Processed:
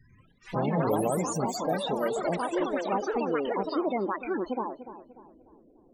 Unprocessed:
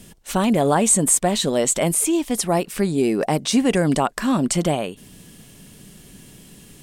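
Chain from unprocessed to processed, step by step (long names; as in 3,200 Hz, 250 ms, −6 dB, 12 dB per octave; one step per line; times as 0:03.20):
gliding playback speed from 58% → 172%
low-pass filter 3,800 Hz 12 dB per octave
low-shelf EQ 330 Hz −5.5 dB
spectral peaks only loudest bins 16
tape delay 295 ms, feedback 43%, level −11.5 dB, low-pass 1,700 Hz
delay with pitch and tempo change per echo 93 ms, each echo +4 semitones, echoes 3
level −8 dB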